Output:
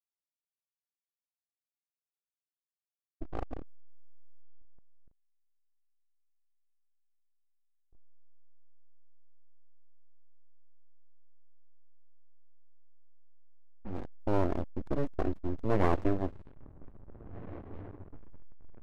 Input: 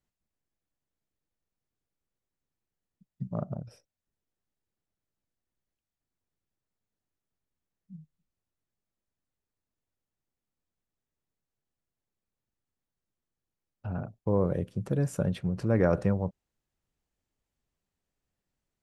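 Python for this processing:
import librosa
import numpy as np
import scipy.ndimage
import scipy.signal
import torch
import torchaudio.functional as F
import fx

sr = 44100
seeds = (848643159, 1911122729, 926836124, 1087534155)

y = np.abs(x)
y = fx.high_shelf(y, sr, hz=2900.0, db=-8.0)
y = fx.echo_diffused(y, sr, ms=1817, feedback_pct=59, wet_db=-12.5)
y = fx.backlash(y, sr, play_db=-35.5)
y = fx.env_lowpass(y, sr, base_hz=670.0, full_db=-29.5)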